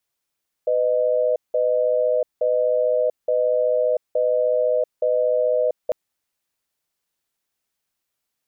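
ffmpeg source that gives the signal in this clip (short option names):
-f lavfi -i "aevalsrc='0.106*(sin(2*PI*501*t)+sin(2*PI*616*t))*clip(min(mod(t,0.87),0.69-mod(t,0.87))/0.005,0,1)':d=5.25:s=44100"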